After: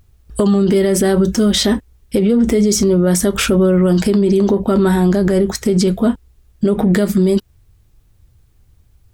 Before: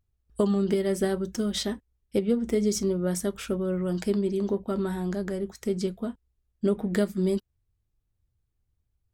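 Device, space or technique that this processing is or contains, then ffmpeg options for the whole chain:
loud club master: -af "acompressor=threshold=-27dB:ratio=2.5,asoftclip=type=hard:threshold=-19dB,alimiter=level_in=29.5dB:limit=-1dB:release=50:level=0:latency=1,volume=-5.5dB"

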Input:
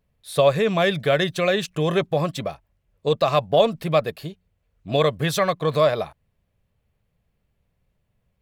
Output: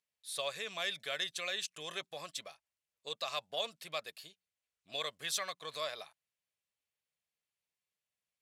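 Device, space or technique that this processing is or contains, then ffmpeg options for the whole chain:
piezo pickup straight into a mixer: -af "lowpass=8100,aderivative,volume=-2dB"

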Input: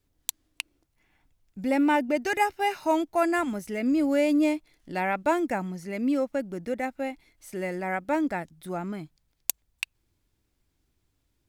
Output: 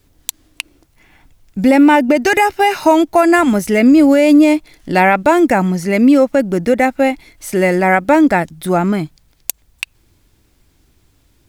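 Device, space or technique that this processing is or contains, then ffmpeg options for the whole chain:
loud club master: -af "acompressor=threshold=-25dB:ratio=2.5,asoftclip=type=hard:threshold=-11.5dB,alimiter=level_in=19.5dB:limit=-1dB:release=50:level=0:latency=1,volume=-1dB"

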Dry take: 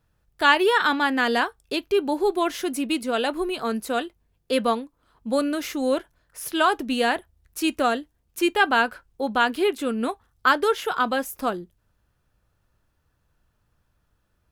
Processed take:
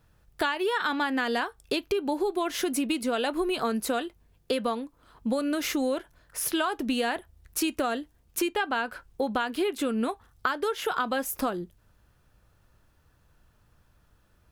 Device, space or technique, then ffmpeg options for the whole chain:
serial compression, peaks first: -filter_complex "[0:a]acompressor=threshold=-26dB:ratio=10,acompressor=threshold=-36dB:ratio=1.5,asettb=1/sr,asplit=3[link_01][link_02][link_03];[link_01]atrim=end=8.494[link_04];[link_02]atrim=start=8.49:end=8.89,asetpts=PTS-STARTPTS,afade=type=in:duration=0.004:curve=qsin,afade=type=out:start_time=0.396:duration=0.004:curve=qsin,highshelf=frequency=11000:gain=-9[link_05];[link_03]atrim=start=8.886[link_06];[link_04][link_05]acrossfade=duration=0.004:curve1=hsin:curve2=qsin[link_07];[link_07][link_06]acrossfade=duration=0.004:curve1=qsin:curve2=hsin,volume=6dB"

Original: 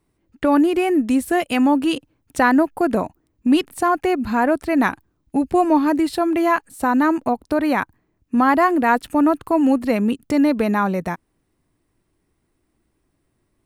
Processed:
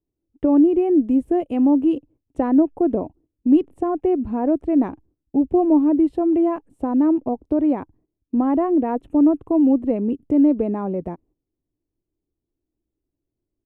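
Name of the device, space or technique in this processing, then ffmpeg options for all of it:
low shelf boost with a cut just above: -filter_complex "[0:a]lowpass=10000,lowshelf=frequency=100:gain=7,equalizer=frequency=210:width_type=o:width=0.59:gain=-3,asettb=1/sr,asplit=3[link_01][link_02][link_03];[link_01]atrim=end=8.464[link_04];[link_02]atrim=start=8.46:end=10.37,asetpts=PTS-STARTPTS,afade=type=in:duration=0.004:curve=qsin,afade=type=out:start_time=1.906:duration=0.004:curve=qsin,bandreject=frequency=4800:width=7[link_05];[link_03]atrim=start=10.366[link_06];[link_04][link_05]acrossfade=duration=0.004:curve1=hsin:curve2=qsin[link_07];[link_07][link_06]acrossfade=duration=0.004:curve1=qsin:curve2=hsin,agate=range=-13dB:threshold=-48dB:ratio=16:detection=peak,firequalizer=gain_entry='entry(170,0);entry(300,7);entry(1500,-19);entry(2900,-15);entry(4300,-28);entry(7000,-23)':delay=0.05:min_phase=1,volume=-4.5dB"

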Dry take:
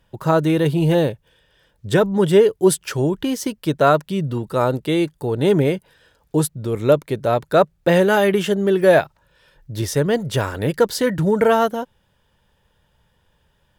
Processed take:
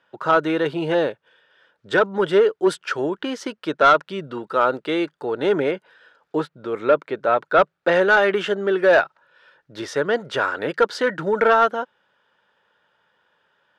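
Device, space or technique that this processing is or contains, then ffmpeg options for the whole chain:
intercom: -filter_complex "[0:a]highpass=360,lowpass=4000,equalizer=frequency=1400:width_type=o:width=0.49:gain=9.5,asoftclip=type=tanh:threshold=-6.5dB,asettb=1/sr,asplit=3[link_01][link_02][link_03];[link_01]atrim=end=5.714[link_04];[link_02]atrim=start=5.71:end=7.59,asetpts=PTS-STARTPTS,afade=type=in:duration=0.004:curve=qsin,afade=type=out:start_time=1.876:duration=0.004:curve=qsin,acrossover=split=3800[link_05][link_06];[link_06]acompressor=threshold=-56dB:ratio=4:attack=1:release=60[link_07];[link_05][link_07]amix=inputs=2:normalize=0[link_08];[link_03]atrim=start=7.586[link_09];[link_04][link_08]acrossfade=duration=0.004:curve1=hsin:curve2=qsin[link_10];[link_10][link_09]acrossfade=duration=0.004:curve1=qsin:curve2=hsin"

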